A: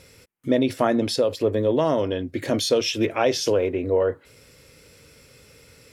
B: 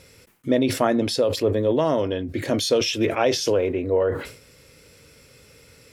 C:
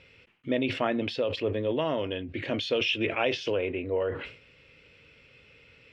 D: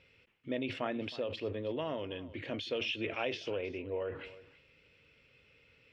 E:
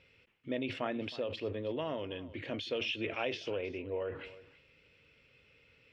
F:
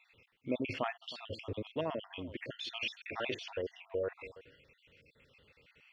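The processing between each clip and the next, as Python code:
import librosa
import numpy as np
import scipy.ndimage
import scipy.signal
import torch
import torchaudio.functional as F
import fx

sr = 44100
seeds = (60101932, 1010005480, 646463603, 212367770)

y1 = fx.sustainer(x, sr, db_per_s=99.0)
y2 = fx.lowpass_res(y1, sr, hz=2800.0, q=3.8)
y2 = y2 * 10.0 ** (-8.0 / 20.0)
y3 = y2 + 10.0 ** (-17.5 / 20.0) * np.pad(y2, (int(316 * sr / 1000.0), 0))[:len(y2)]
y3 = y3 * 10.0 ** (-8.5 / 20.0)
y4 = y3
y5 = fx.spec_dropout(y4, sr, seeds[0], share_pct=50)
y5 = y5 * 10.0 ** (2.5 / 20.0)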